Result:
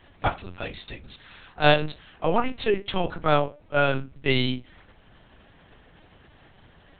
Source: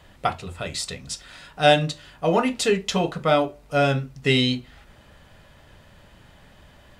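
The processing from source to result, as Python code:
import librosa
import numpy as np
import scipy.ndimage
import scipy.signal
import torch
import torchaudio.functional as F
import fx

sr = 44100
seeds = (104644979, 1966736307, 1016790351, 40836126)

y = fx.dynamic_eq(x, sr, hz=1200.0, q=0.98, threshold_db=-34.0, ratio=4.0, max_db=4)
y = fx.lpc_vocoder(y, sr, seeds[0], excitation='pitch_kept', order=8)
y = F.gain(torch.from_numpy(y), -3.0).numpy()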